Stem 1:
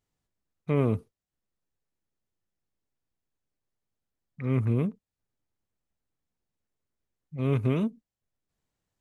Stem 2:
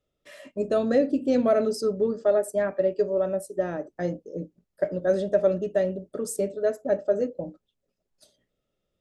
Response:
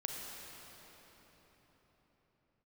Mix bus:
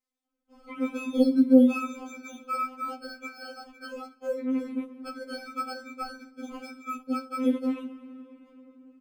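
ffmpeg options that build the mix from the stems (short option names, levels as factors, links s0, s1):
-filter_complex "[0:a]volume=0.473,asplit=2[s0][s1];[s1]volume=0.501[s2];[1:a]acrusher=samples=23:mix=1:aa=0.000001,lowpass=f=2200:p=1,lowshelf=f=330:g=11.5,adelay=250,volume=0.531,asplit=2[s3][s4];[s4]volume=0.075[s5];[2:a]atrim=start_sample=2205[s6];[s2][s5]amix=inputs=2:normalize=0[s7];[s7][s6]afir=irnorm=-1:irlink=0[s8];[s0][s3][s8]amix=inputs=3:normalize=0,highpass=f=49:p=1,afftfilt=real='re*3.46*eq(mod(b,12),0)':imag='im*3.46*eq(mod(b,12),0)':win_size=2048:overlap=0.75"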